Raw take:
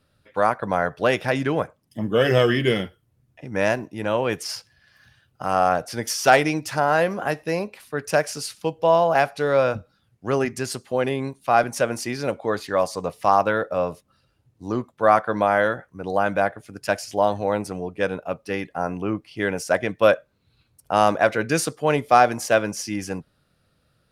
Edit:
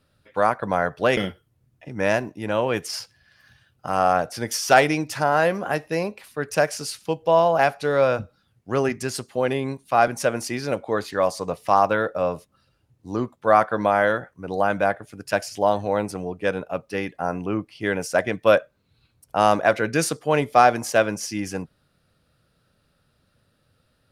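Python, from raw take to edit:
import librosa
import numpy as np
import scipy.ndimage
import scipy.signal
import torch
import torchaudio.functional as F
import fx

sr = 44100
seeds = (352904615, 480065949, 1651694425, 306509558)

y = fx.edit(x, sr, fx.cut(start_s=1.17, length_s=1.56), tone=tone)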